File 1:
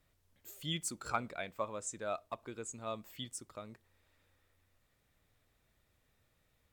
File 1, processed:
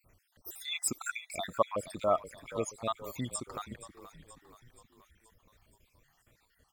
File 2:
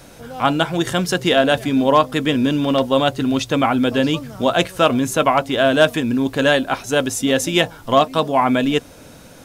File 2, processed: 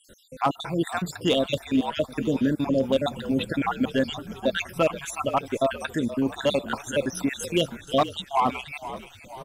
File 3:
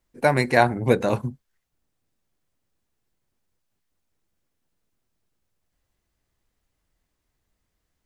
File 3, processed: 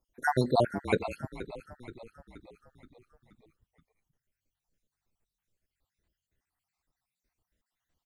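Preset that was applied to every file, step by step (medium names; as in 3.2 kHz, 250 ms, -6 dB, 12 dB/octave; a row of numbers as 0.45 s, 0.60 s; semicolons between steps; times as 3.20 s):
random holes in the spectrogram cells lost 65%; overload inside the chain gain 9 dB; frequency-shifting echo 476 ms, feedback 55%, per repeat -45 Hz, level -14 dB; peak normalisation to -12 dBFS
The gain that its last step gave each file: +11.0 dB, -4.5 dB, -3.0 dB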